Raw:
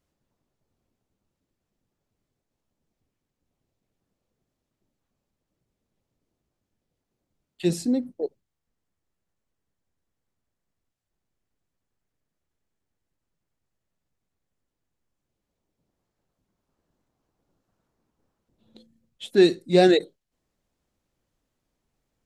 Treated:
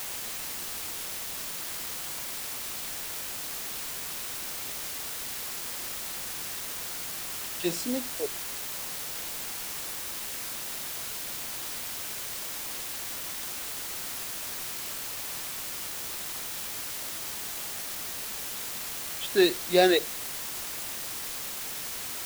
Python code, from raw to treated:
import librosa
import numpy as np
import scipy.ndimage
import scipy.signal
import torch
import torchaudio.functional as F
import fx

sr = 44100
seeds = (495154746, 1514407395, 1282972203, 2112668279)

y = fx.weighting(x, sr, curve='A')
y = fx.quant_dither(y, sr, seeds[0], bits=6, dither='triangular')